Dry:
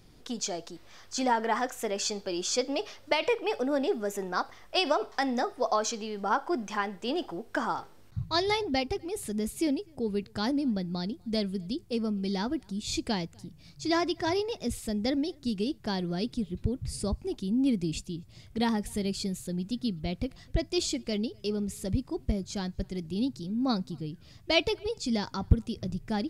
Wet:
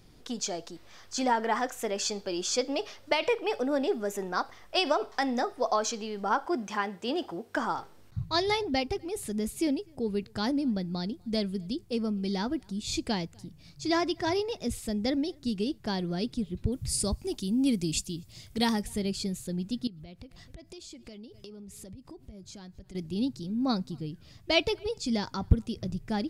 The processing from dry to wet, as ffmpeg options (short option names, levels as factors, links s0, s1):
-filter_complex "[0:a]asettb=1/sr,asplit=3[s0][s1][s2];[s0]atrim=end=6.454[s3];[s1]atrim=start=6.45:end=7.58,asetpts=PTS-STARTPTS,afade=t=in:d=0.004:c=qsin,afade=t=out:st=1.126:d=0.004:c=qsin,highpass=65[s4];[s2]atrim=start=7.576[s5];[s3][s4]acrossfade=d=0.004:c1=hsin:c2=qsin[s6];[s6][s5]acrossfade=d=0.004:c1=qsin:c2=hsin,asettb=1/sr,asplit=3[s7][s8][s9];[s7]atrim=end=16.724[s10];[s8]atrim=start=16.72:end=18.82,asetpts=PTS-STARTPTS,afade=t=in:d=0.004:c=qsin,afade=t=out:st=2.096:d=0.004:c=qsin,highshelf=f=3900:g=12[s11];[s9]atrim=start=18.816[s12];[s10][s11]acrossfade=d=0.004:c1=hsin:c2=qsin[s13];[s13][s12]acrossfade=d=0.004:c1=qsin:c2=hsin,asettb=1/sr,asplit=3[s14][s15][s16];[s14]atrim=end=19.874[s17];[s15]atrim=start=19.87:end=22.95,asetpts=PTS-STARTPTS,afade=t=in:d=0.004:c=qsin,afade=t=out:st=3.076:d=0.004:c=qsin,acompressor=threshold=0.00794:ratio=16:attack=3.2:release=140:knee=1:detection=peak[s18];[s16]atrim=start=22.946[s19];[s17][s18]acrossfade=d=0.004:c1=hsin:c2=qsin[s20];[s20][s19]acrossfade=d=0.004:c1=qsin:c2=hsin"